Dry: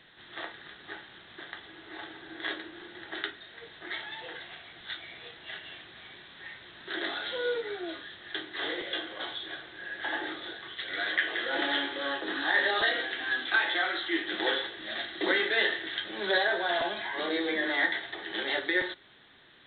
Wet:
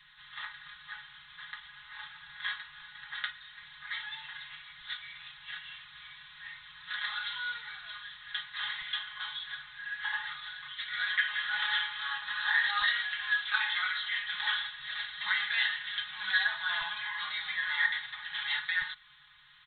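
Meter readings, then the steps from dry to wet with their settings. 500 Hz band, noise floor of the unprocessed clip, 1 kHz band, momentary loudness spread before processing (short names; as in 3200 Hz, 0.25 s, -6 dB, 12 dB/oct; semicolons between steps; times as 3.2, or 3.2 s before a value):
under -30 dB, -53 dBFS, -4.5 dB, 18 LU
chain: elliptic band-stop 140–1000 Hz, stop band 40 dB; comb 4.8 ms, depth 88%; gain -2.5 dB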